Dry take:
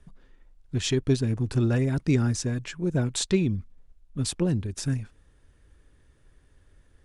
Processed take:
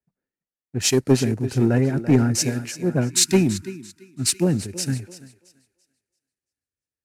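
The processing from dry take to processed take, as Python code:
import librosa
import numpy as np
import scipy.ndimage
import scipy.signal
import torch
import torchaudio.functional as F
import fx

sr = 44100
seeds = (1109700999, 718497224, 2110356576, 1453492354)

y = fx.cvsd(x, sr, bps=64000)
y = scipy.signal.sosfilt(scipy.signal.butter(2, 140.0, 'highpass', fs=sr, output='sos'), y)
y = fx.peak_eq(y, sr, hz=3400.0, db=-12.5, octaves=0.25)
y = fx.echo_thinned(y, sr, ms=337, feedback_pct=52, hz=210.0, wet_db=-8.5)
y = fx.spec_erase(y, sr, start_s=3.1, length_s=1.33, low_hz=400.0, high_hz=900.0)
y = fx.peak_eq(y, sr, hz=1100.0, db=-11.0, octaves=0.27)
y = 10.0 ** (-18.0 / 20.0) * np.tanh(y / 10.0 ** (-18.0 / 20.0))
y = fx.band_widen(y, sr, depth_pct=100)
y = y * librosa.db_to_amplitude(6.5)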